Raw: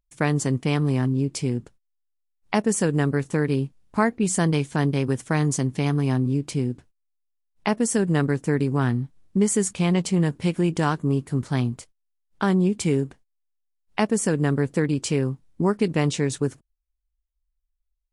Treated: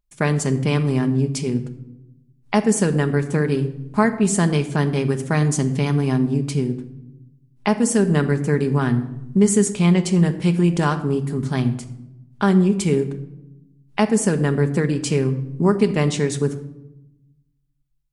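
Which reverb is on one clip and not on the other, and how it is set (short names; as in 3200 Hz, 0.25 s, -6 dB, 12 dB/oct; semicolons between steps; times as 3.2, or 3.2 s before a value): shoebox room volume 3400 m³, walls furnished, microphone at 1.3 m; gain +2 dB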